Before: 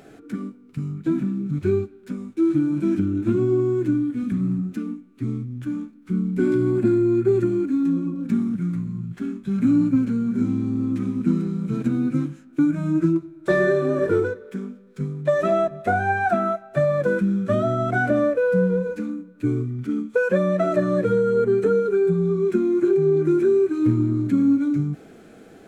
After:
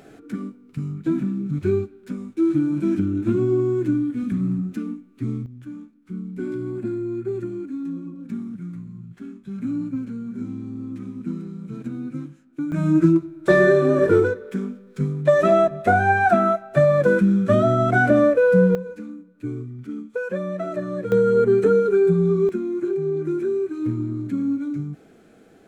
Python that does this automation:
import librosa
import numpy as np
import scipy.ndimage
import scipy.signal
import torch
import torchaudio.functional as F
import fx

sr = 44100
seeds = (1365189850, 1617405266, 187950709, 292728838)

y = fx.gain(x, sr, db=fx.steps((0.0, 0.0), (5.46, -8.5), (12.72, 4.0), (18.75, -7.0), (21.12, 2.5), (22.49, -5.5)))